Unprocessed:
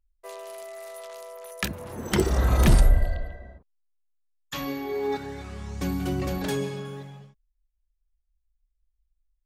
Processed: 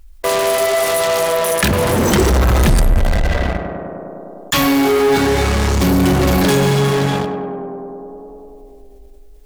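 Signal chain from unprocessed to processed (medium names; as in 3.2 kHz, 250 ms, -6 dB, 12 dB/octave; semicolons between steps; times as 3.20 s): in parallel at -5.5 dB: fuzz box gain 44 dB, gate -44 dBFS; on the sum: tape echo 100 ms, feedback 81%, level -9.5 dB, low-pass 1.6 kHz; level flattener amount 50%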